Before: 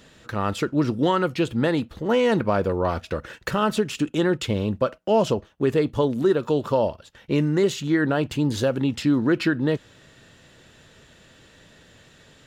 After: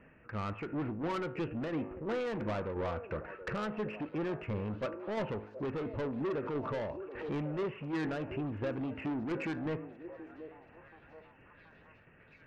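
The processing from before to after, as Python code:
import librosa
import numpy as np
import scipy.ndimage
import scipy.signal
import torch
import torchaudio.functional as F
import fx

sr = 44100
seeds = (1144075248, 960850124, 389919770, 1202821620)

y = scipy.signal.sosfilt(scipy.signal.butter(16, 2700.0, 'lowpass', fs=sr, output='sos'), x)
y = fx.comb_fb(y, sr, f0_hz=53.0, decay_s=0.61, harmonics='all', damping=0.0, mix_pct=50)
y = 10.0 ** (-28.5 / 20.0) * np.tanh(y / 10.0 ** (-28.5 / 20.0))
y = fx.tremolo_shape(y, sr, shape='saw_down', hz=2.9, depth_pct=40)
y = fx.echo_stepped(y, sr, ms=728, hz=440.0, octaves=0.7, feedback_pct=70, wet_db=-9.0)
y = fx.pre_swell(y, sr, db_per_s=57.0, at=(5.98, 7.46))
y = F.gain(torch.from_numpy(y), -2.0).numpy()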